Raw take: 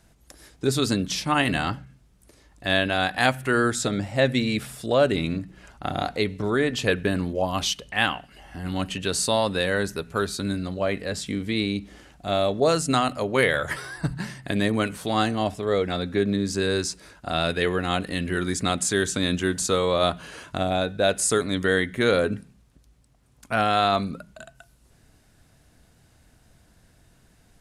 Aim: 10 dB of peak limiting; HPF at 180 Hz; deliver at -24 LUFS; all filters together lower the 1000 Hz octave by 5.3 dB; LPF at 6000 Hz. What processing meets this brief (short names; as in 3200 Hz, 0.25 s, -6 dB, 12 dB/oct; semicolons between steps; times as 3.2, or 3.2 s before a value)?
HPF 180 Hz; LPF 6000 Hz; bell 1000 Hz -8.5 dB; gain +6 dB; limiter -11.5 dBFS